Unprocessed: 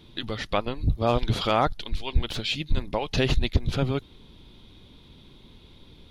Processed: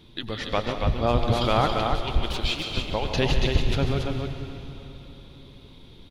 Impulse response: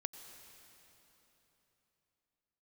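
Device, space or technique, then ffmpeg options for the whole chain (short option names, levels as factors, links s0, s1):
cave: -filter_complex "[0:a]aecho=1:1:183:0.211[s0];[1:a]atrim=start_sample=2205[s1];[s0][s1]afir=irnorm=-1:irlink=0,asettb=1/sr,asplit=3[s2][s3][s4];[s2]atrim=end=2.344[s5];[s3]atrim=start=2.34:end=2.77,asetpts=PTS-STARTPTS,afade=t=in:d=0.004:c=qsin,afade=t=out:st=0.426:d=0.004:c=qsin,highpass=f=280:p=1[s6];[s4]atrim=start=2.766[s7];[s5][s6]acrossfade=d=0.004:c1=hsin:c2=qsin[s8];[s8][s7]acrossfade=d=0.004:c1=qsin:c2=hsin,aecho=1:1:145.8|279.9:0.316|0.562,volume=1.26"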